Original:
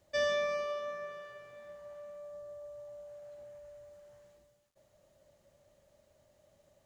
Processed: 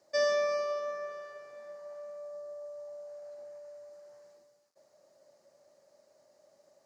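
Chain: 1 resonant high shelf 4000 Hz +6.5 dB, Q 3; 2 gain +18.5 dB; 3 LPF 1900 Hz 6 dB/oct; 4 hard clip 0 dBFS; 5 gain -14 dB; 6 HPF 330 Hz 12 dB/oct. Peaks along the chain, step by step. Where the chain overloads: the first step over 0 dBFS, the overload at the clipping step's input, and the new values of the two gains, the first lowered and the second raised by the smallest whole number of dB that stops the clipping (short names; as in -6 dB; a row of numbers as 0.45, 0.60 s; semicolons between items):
-19.0, -0.5, -4.0, -4.0, -18.0, -20.0 dBFS; no overload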